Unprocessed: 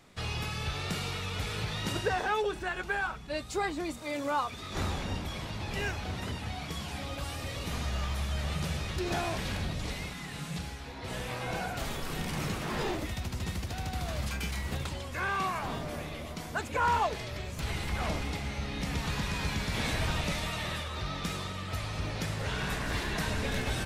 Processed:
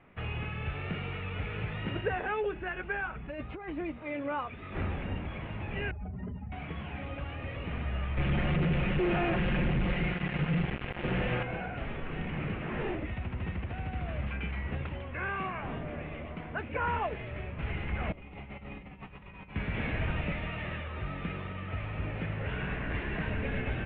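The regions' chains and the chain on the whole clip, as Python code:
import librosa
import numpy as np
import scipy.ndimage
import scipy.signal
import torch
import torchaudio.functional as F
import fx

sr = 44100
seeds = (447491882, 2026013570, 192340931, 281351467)

y = fx.chain(x, sr, fx.high_shelf(hz=5200.0, db=-10.5),
    fx.over_compress(threshold_db=-38.0, ratio=-1.0), at=(3.15, 3.69))
y = fx.chain(y, sr, fx.spec_expand(power=1.9),
    fx.spacing_loss(db_at_10k=43),
    fx.comb(ms=4.9, depth=0.58), at=(5.91, 6.52))
y = fx.chain(y, sr, fx.lower_of_two(delay_ms=5.6),
    fx.low_shelf(hz=350.0, db=5.0),
    fx.quant_companded(bits=2), at=(8.17, 11.43))
y = fx.chain(y, sr, fx.peak_eq(hz=1600.0, db=-8.0, octaves=0.37),
    fx.over_compress(threshold_db=-37.0, ratio=-0.5),
    fx.comb_fb(f0_hz=190.0, decay_s=0.2, harmonics='all', damping=0.0, mix_pct=70), at=(18.12, 19.56))
y = scipy.signal.sosfilt(scipy.signal.butter(8, 2800.0, 'lowpass', fs=sr, output='sos'), y)
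y = fx.dynamic_eq(y, sr, hz=990.0, q=1.4, threshold_db=-47.0, ratio=4.0, max_db=-6)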